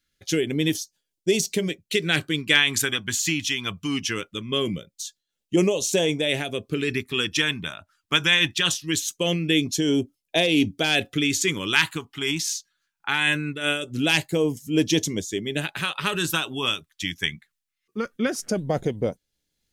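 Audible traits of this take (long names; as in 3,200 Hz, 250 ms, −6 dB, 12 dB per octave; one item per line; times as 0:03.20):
phaser sweep stages 2, 0.22 Hz, lowest notch 490–1,300 Hz
amplitude modulation by smooth noise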